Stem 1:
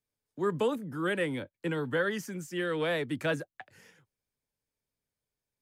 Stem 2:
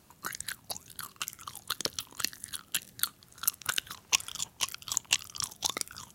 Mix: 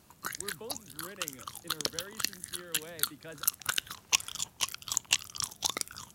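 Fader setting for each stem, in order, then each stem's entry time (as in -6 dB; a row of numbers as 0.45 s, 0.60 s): -16.5 dB, 0.0 dB; 0.00 s, 0.00 s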